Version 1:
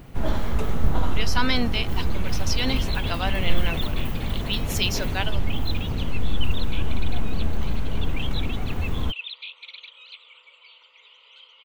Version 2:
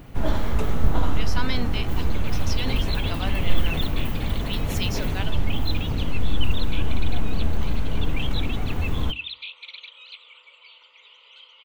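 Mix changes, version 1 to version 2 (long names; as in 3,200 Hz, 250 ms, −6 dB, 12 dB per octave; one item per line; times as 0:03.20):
speech −6.5 dB
reverb: on, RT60 0.40 s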